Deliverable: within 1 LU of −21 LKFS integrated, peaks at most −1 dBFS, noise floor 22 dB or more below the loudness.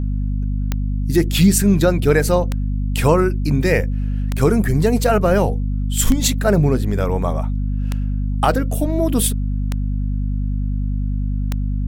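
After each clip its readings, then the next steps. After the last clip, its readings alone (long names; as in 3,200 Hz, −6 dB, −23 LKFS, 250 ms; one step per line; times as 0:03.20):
number of clicks 7; mains hum 50 Hz; hum harmonics up to 250 Hz; level of the hum −18 dBFS; integrated loudness −19.0 LKFS; sample peak −2.5 dBFS; target loudness −21.0 LKFS
→ click removal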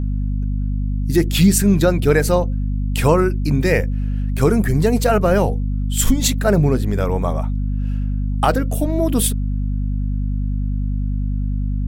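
number of clicks 0; mains hum 50 Hz; hum harmonics up to 250 Hz; level of the hum −18 dBFS
→ mains-hum notches 50/100/150/200/250 Hz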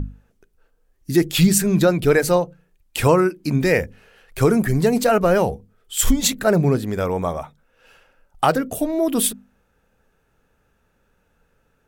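mains hum none found; integrated loudness −19.0 LKFS; sample peak −4.0 dBFS; target loudness −21.0 LKFS
→ level −2 dB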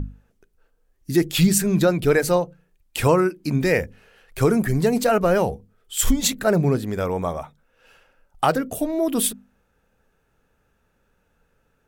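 integrated loudness −21.0 LKFS; sample peak −6.0 dBFS; background noise floor −68 dBFS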